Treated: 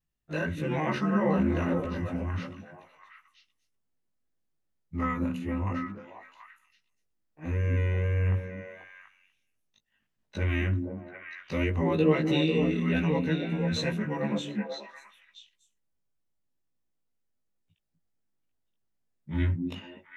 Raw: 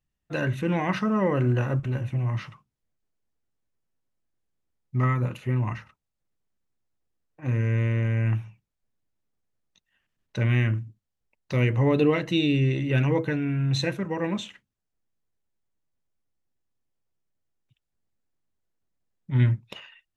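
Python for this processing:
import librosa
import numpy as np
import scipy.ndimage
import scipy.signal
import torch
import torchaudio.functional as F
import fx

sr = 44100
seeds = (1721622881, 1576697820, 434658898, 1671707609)

y = fx.frame_reverse(x, sr, frame_ms=39.0)
y = fx.echo_stepped(y, sr, ms=244, hz=230.0, octaves=1.4, feedback_pct=70, wet_db=0)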